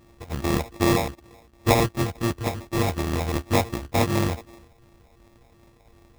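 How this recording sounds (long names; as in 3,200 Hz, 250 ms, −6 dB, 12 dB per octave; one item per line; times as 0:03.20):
a buzz of ramps at a fixed pitch in blocks of 128 samples
phaser sweep stages 6, 2.7 Hz, lowest notch 390–1,300 Hz
aliases and images of a low sample rate 1,500 Hz, jitter 0%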